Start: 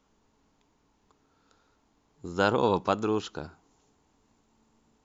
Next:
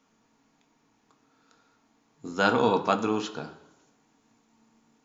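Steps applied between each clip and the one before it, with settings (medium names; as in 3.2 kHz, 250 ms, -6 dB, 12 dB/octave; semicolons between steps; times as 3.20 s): reverberation RT60 1.0 s, pre-delay 3 ms, DRR 5.5 dB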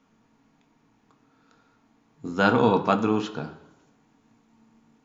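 tone controls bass +6 dB, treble -7 dB; trim +2 dB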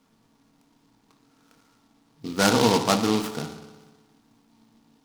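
bucket-brigade echo 60 ms, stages 1024, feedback 74%, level -13.5 dB; delay time shaken by noise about 3.7 kHz, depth 0.088 ms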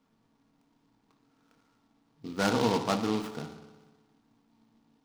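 peaking EQ 14 kHz -8.5 dB 2 oct; trim -6.5 dB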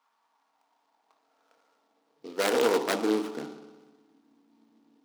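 self-modulated delay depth 0.46 ms; high-pass sweep 960 Hz -> 300 Hz, 0.14–3.43 s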